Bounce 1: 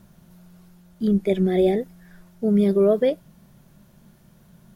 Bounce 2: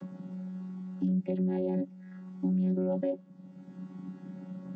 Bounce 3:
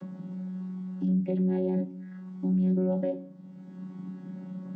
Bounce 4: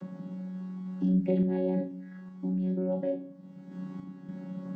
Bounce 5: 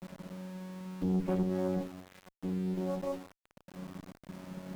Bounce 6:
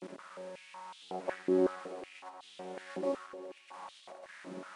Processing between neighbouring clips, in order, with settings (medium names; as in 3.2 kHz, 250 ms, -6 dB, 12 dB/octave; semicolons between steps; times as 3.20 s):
vocoder on a held chord bare fifth, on F#3; peak limiter -19 dBFS, peak gain reduction 9 dB; three bands compressed up and down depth 70%; trim -3.5 dB
reverberation RT60 0.45 s, pre-delay 5 ms, DRR 7 dB
random-step tremolo; on a send: flutter echo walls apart 6.8 m, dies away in 0.3 s; on the sum: trim +3 dB
small samples zeroed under -40 dBFS; valve stage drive 24 dB, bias 0.8
knee-point frequency compression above 2.4 kHz 1.5:1; echo with a slow build-up 105 ms, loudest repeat 5, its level -17.5 dB; step-sequenced high-pass 5.4 Hz 330–3400 Hz